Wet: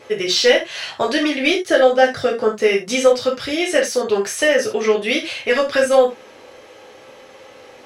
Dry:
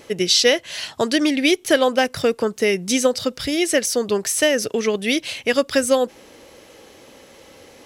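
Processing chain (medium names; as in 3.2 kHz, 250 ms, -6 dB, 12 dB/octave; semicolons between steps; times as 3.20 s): 1.51–2.44 s: graphic EQ with 31 bands 1 kHz -10 dB, 2.5 kHz -9 dB, 12.5 kHz -7 dB; overdrive pedal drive 10 dB, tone 1.7 kHz, clips at -1 dBFS; gated-style reverb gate 110 ms falling, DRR -2.5 dB; trim -2 dB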